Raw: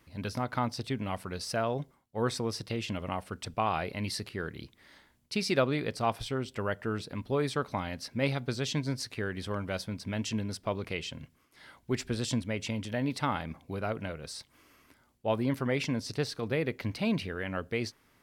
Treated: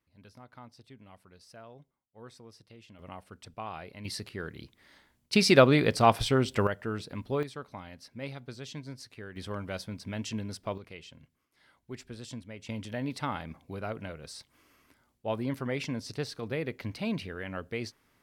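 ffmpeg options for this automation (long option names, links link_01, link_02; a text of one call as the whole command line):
ffmpeg -i in.wav -af "asetnsamples=nb_out_samples=441:pad=0,asendcmd='2.99 volume volume -10dB;4.05 volume volume -2dB;5.33 volume volume 8dB;6.67 volume volume -1dB;7.43 volume volume -10dB;9.36 volume volume -2.5dB;10.78 volume volume -11dB;12.69 volume volume -3dB',volume=-19dB" out.wav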